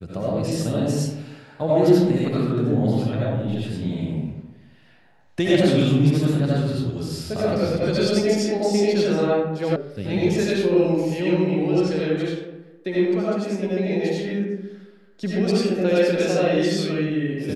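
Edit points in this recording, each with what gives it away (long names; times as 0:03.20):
0:09.76: cut off before it has died away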